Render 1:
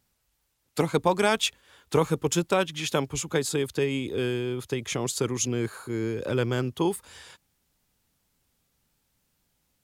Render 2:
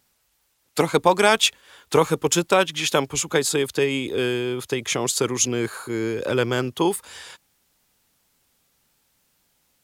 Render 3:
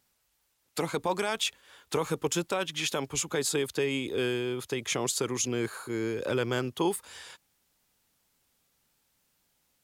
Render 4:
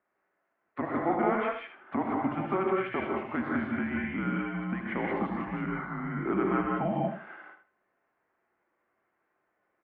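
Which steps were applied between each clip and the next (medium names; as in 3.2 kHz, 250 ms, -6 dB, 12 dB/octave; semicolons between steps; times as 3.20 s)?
bass shelf 240 Hz -10 dB; trim +7.5 dB
peak limiter -12 dBFS, peak gain reduction 10 dB; trim -6 dB
feedback delay 78 ms, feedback 22%, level -9 dB; gated-style reverb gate 210 ms rising, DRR -1.5 dB; mistuned SSB -190 Hz 430–2100 Hz; trim +1 dB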